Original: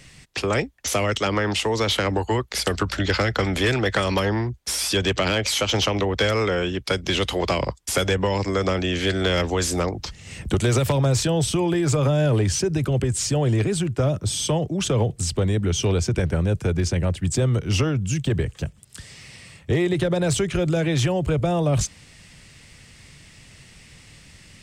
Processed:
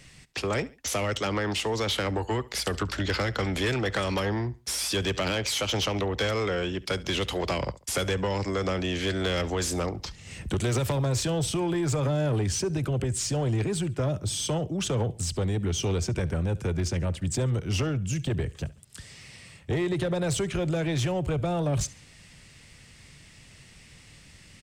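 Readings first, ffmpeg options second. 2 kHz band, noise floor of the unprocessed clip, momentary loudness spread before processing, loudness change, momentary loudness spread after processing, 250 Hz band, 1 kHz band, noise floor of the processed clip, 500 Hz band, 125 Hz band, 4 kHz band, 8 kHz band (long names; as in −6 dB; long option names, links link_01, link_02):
−6.0 dB, −49 dBFS, 5 LU, −5.5 dB, 4 LU, −5.5 dB, −5.5 dB, −52 dBFS, −6.0 dB, −5.5 dB, −5.5 dB, −5.0 dB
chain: -af "aecho=1:1:70|140:0.0841|0.0286,asoftclip=type=tanh:threshold=-16dB,volume=-4dB"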